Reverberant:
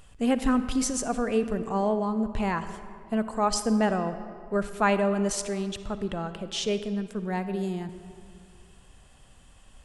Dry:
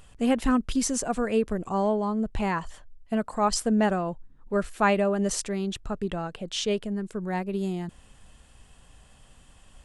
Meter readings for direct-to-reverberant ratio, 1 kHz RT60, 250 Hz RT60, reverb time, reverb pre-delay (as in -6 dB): 10.5 dB, 2.1 s, 2.3 s, 2.2 s, 38 ms